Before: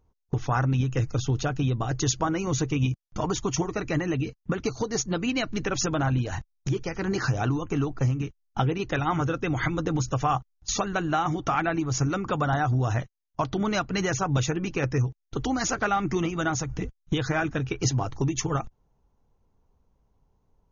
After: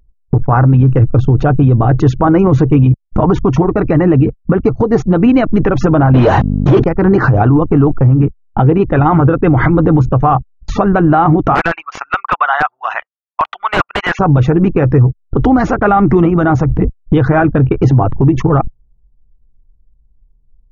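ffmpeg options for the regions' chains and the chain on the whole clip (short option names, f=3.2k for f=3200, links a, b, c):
-filter_complex "[0:a]asettb=1/sr,asplit=3[a][b][c];[a]atrim=end=6.144[d];[b]atrim=start=6.14:end=6.84,asetpts=PTS-STARTPTS,afade=t=in:d=0.004:c=qsin,afade=t=out:st=0.696:d=0.004:c=qsin,highshelf=f=2.7k:t=q:w=1.5:g=9.5,aeval=exprs='val(0)+0.00631*(sin(2*PI*50*n/s)+sin(2*PI*2*50*n/s)/2+sin(2*PI*3*50*n/s)/3+sin(2*PI*4*50*n/s)/4+sin(2*PI*5*50*n/s)/5)':c=same,asplit=2[e][f];[f]highpass=f=720:p=1,volume=35dB,asoftclip=type=tanh:threshold=-13dB[g];[e][g]amix=inputs=2:normalize=0,lowpass=f=1.9k:p=1,volume=-6dB[h];[c]atrim=start=6.836[i];[d][h]acrossfade=d=0.004:c1=hsin:c2=qsin[j];[j][i]acrossfade=d=0.004:c1=qsin:c2=hsin,asettb=1/sr,asplit=3[k][l][m];[k]atrim=end=11.554[n];[l]atrim=start=11.55:end=14.19,asetpts=PTS-STARTPTS,afade=t=in:d=0.004:c=qsin,afade=t=out:st=2.636:d=0.004:c=qsin,highpass=f=950:w=0.5412,highpass=f=950:w=1.3066,equalizer=f=2.7k:t=o:w=0.97:g=11,aeval=exprs='(mod(7.08*val(0)+1,2)-1)/7.08':c=same[o];[m]atrim=start=14.186[p];[n][o]acrossfade=d=0.004:c1=hsin:c2=qsin[q];[q][p]acrossfade=d=0.004:c1=qsin:c2=hsin,anlmdn=3.98,lowpass=1.1k,alimiter=level_in=22.5dB:limit=-1dB:release=50:level=0:latency=1,volume=-1dB"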